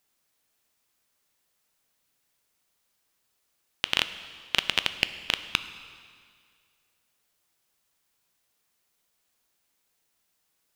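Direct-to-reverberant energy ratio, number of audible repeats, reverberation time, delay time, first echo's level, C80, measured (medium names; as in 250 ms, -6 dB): 11.0 dB, no echo, 2.1 s, no echo, no echo, 13.0 dB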